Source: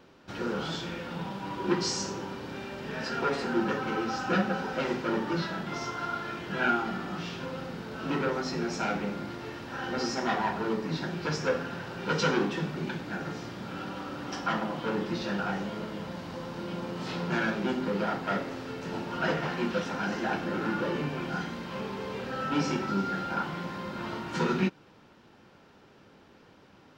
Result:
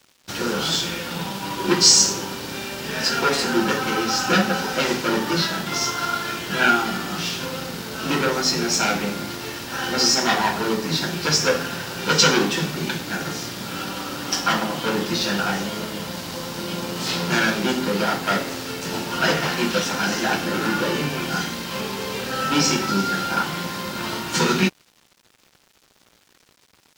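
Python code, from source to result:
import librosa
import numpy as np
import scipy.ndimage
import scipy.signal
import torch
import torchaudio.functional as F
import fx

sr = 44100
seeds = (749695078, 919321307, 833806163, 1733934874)

y = fx.high_shelf(x, sr, hz=6400.0, db=11.5)
y = np.sign(y) * np.maximum(np.abs(y) - 10.0 ** (-53.0 / 20.0), 0.0)
y = fx.high_shelf(y, sr, hz=2900.0, db=11.0)
y = y * 10.0 ** (7.0 / 20.0)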